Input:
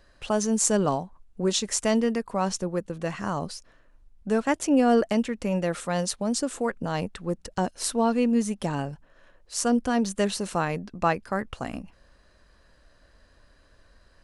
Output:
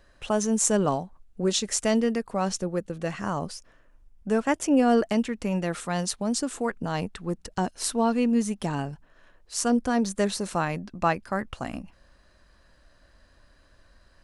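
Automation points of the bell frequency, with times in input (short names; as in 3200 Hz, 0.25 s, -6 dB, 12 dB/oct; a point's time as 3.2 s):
bell -6.5 dB 0.21 oct
4600 Hz
from 0.94 s 1000 Hz
from 3.2 s 4100 Hz
from 4.82 s 540 Hz
from 9.7 s 2900 Hz
from 10.51 s 450 Hz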